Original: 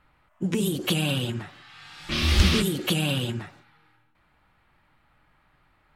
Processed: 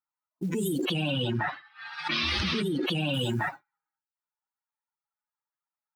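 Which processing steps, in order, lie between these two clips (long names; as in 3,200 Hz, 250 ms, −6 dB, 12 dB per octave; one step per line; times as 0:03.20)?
spectral dynamics exaggerated over time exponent 2
high-pass filter 150 Hz 12 dB per octave
downward expander −56 dBFS
speech leveller 2 s
floating-point word with a short mantissa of 4 bits
0:00.85–0:03.14: Savitzky-Golay smoothing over 15 samples
envelope flattener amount 100%
level −3.5 dB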